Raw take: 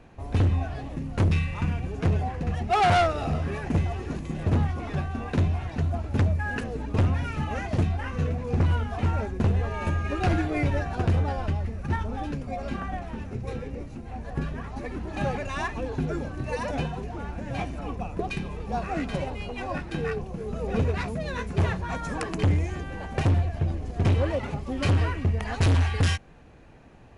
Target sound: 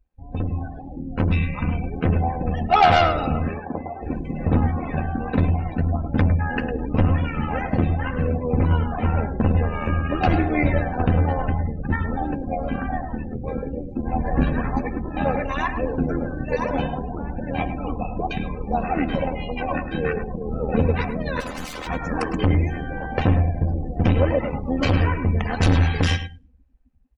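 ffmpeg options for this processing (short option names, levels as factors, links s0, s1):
-filter_complex "[0:a]asplit=3[s0][s1][s2];[s0]afade=t=out:st=3.53:d=0.02[s3];[s1]bandpass=f=760:t=q:w=0.9:csg=0,afade=t=in:st=3.53:d=0.02,afade=t=out:st=4.01:d=0.02[s4];[s2]afade=t=in:st=4.01:d=0.02[s5];[s3][s4][s5]amix=inputs=3:normalize=0,asplit=3[s6][s7][s8];[s6]afade=t=out:st=13.95:d=0.02[s9];[s7]acontrast=74,afade=t=in:st=13.95:d=0.02,afade=t=out:st=14.8:d=0.02[s10];[s8]afade=t=in:st=14.8:d=0.02[s11];[s9][s10][s11]amix=inputs=3:normalize=0,asettb=1/sr,asplit=3[s12][s13][s14];[s12]atrim=end=21.404[s15];[s13]atrim=start=21.4:end=21.87,asetpts=PTS-STARTPTS,afade=t=in:d=0.004:c=qsin,afade=t=out:st=0.466:d=0.004:c=qsin,aeval=exprs='(mod(39.8*val(0)+1,2)-1)/39.8':c=same[s16];[s14]atrim=start=21.866[s17];[s15][s16]acrossfade=d=0.004:c1=hsin:c2=qsin[s18];[s18][s17]acrossfade=d=0.004:c1=qsin:c2=hsin,aecho=1:1:3.9:0.49,tremolo=f=80:d=0.667,aecho=1:1:105|210|315:0.355|0.103|0.0298,dynaudnorm=f=180:g=13:m=2.37,afftdn=nr=30:nf=-35"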